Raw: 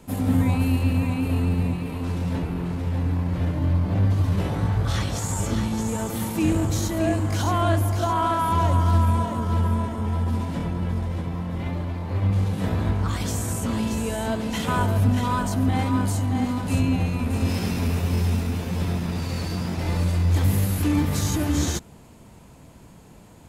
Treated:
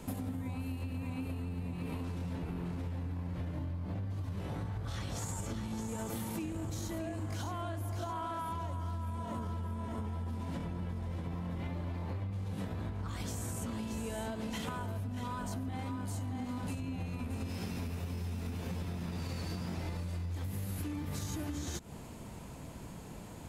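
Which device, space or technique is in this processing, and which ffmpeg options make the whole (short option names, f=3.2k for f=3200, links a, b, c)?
serial compression, peaks first: -af "acompressor=threshold=-30dB:ratio=6,acompressor=threshold=-36dB:ratio=6,volume=1dB"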